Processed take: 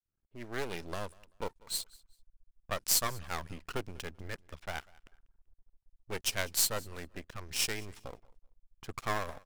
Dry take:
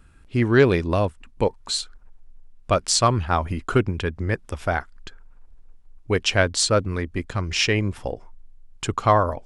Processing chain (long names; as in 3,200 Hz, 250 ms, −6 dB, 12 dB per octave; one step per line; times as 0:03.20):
fade in at the beginning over 0.93 s
low-pass that shuts in the quiet parts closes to 880 Hz, open at −18.5 dBFS
half-wave rectification
first-order pre-emphasis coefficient 0.8
on a send: repeating echo 193 ms, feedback 25%, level −24 dB